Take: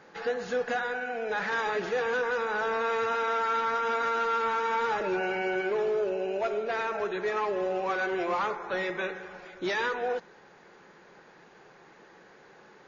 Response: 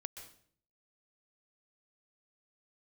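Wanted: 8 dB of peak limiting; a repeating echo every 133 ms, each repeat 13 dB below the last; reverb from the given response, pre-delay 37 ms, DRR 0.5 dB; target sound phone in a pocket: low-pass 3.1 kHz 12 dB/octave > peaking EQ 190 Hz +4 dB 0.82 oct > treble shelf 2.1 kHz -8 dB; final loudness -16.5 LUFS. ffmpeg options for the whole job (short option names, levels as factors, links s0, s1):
-filter_complex "[0:a]alimiter=level_in=1.58:limit=0.0631:level=0:latency=1,volume=0.631,aecho=1:1:133|266|399:0.224|0.0493|0.0108,asplit=2[s0][s1];[1:a]atrim=start_sample=2205,adelay=37[s2];[s1][s2]afir=irnorm=-1:irlink=0,volume=1.33[s3];[s0][s3]amix=inputs=2:normalize=0,lowpass=3100,equalizer=f=190:t=o:w=0.82:g=4,highshelf=f=2100:g=-8,volume=6.68"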